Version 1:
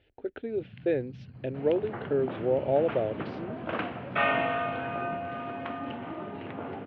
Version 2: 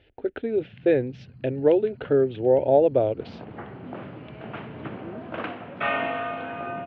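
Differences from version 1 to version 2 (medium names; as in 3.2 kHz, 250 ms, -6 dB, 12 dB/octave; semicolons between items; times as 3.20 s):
speech +7.0 dB; second sound: entry +1.65 s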